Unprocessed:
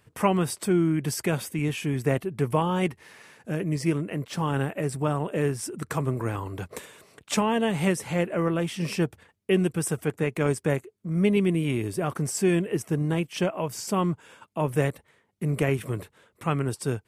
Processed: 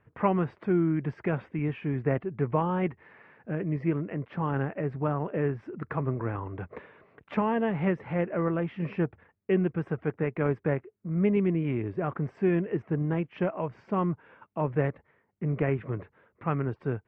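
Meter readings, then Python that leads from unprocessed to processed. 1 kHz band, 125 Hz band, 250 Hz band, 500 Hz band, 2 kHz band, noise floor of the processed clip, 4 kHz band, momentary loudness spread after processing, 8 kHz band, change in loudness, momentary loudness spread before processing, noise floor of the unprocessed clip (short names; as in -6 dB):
-2.5 dB, -2.5 dB, -2.5 dB, -2.5 dB, -5.0 dB, -71 dBFS, under -15 dB, 8 LU, under -40 dB, -3.0 dB, 8 LU, -68 dBFS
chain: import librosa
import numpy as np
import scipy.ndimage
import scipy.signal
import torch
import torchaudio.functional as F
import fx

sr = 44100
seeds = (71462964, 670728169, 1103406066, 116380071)

y = scipy.signal.sosfilt(scipy.signal.butter(4, 2100.0, 'lowpass', fs=sr, output='sos'), x)
y = y * librosa.db_to_amplitude(-2.5)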